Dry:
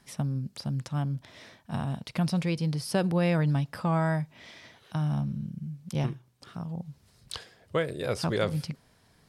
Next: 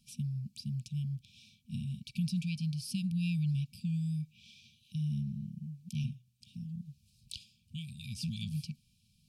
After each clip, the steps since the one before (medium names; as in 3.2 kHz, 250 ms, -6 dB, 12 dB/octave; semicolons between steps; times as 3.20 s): FFT band-reject 240–2300 Hz; trim -5.5 dB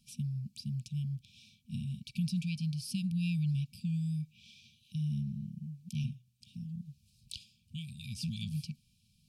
no audible change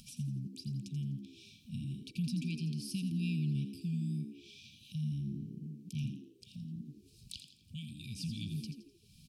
upward compressor, threshold -44 dBFS; on a send: frequency-shifting echo 84 ms, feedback 39%, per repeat +64 Hz, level -9.5 dB; on the sum: trim -2.5 dB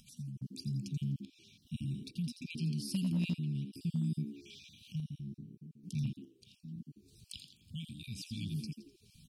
random holes in the spectrogram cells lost 21%; random-step tremolo 2.4 Hz, depth 65%; overload inside the chain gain 30 dB; trim +3 dB